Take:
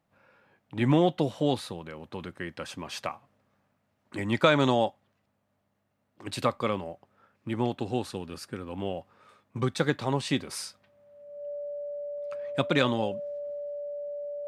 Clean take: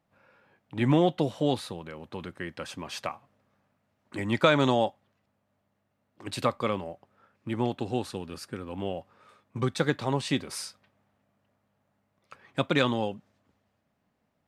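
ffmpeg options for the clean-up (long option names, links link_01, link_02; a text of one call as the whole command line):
ffmpeg -i in.wav -af "bandreject=frequency=580:width=30" out.wav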